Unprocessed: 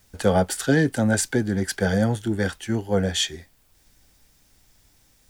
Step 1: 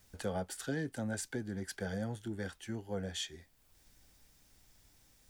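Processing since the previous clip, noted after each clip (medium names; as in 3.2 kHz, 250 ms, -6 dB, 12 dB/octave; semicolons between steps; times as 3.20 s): compression 1.5:1, threshold -48 dBFS, peak gain reduction 12 dB; trim -6 dB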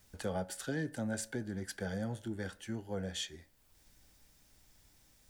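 reverberation RT60 0.55 s, pre-delay 3 ms, DRR 15 dB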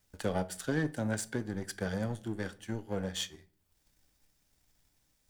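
power-law waveshaper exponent 1.4; simulated room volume 540 m³, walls furnished, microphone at 0.39 m; trim +7 dB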